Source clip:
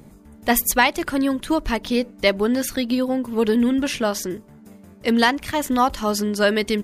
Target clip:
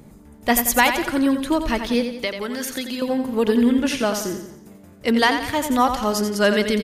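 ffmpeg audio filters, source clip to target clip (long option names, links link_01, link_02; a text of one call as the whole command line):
ffmpeg -i in.wav -filter_complex "[0:a]asettb=1/sr,asplit=3[link_01][link_02][link_03];[link_01]atrim=end=2.164[link_04];[link_02]atrim=start=2.16:end=3.02,asetpts=PTS-STARTPTS,afade=type=in:duration=0.004:curve=qsin,afade=type=out:start_time=0.856:duration=0.004:curve=qsin,acrossover=split=120|950[link_05][link_06][link_07];[link_05]acompressor=threshold=-54dB:ratio=4[link_08];[link_06]acompressor=threshold=-29dB:ratio=4[link_09];[link_07]acompressor=threshold=-26dB:ratio=4[link_10];[link_08][link_09][link_10]amix=inputs=3:normalize=0[link_11];[link_03]atrim=start=3.016[link_12];[link_04][link_11]acrossfade=duration=0.004:curve1=hsin:curve2=qsin[link_13];[link_13][link_12]acrossfade=duration=0.004:curve1=qsin:curve2=hsin,aecho=1:1:88|176|264|352|440:0.398|0.183|0.0842|0.0388|0.0178" out.wav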